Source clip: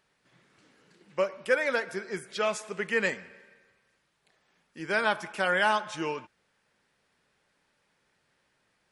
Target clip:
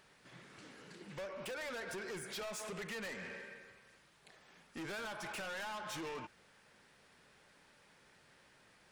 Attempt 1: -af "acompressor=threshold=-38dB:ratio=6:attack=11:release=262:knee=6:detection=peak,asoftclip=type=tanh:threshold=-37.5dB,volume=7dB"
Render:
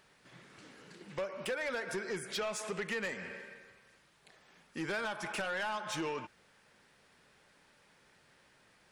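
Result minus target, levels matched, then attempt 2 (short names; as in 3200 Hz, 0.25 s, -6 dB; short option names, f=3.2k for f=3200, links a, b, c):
soft clip: distortion -7 dB
-af "acompressor=threshold=-38dB:ratio=6:attack=11:release=262:knee=6:detection=peak,asoftclip=type=tanh:threshold=-48dB,volume=7dB"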